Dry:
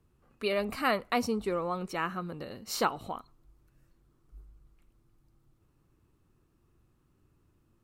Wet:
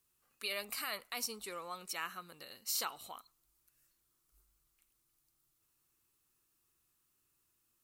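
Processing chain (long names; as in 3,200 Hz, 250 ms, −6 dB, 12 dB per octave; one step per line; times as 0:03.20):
first-order pre-emphasis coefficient 0.97
brickwall limiter −32.5 dBFS, peak gain reduction 8.5 dB
level +7 dB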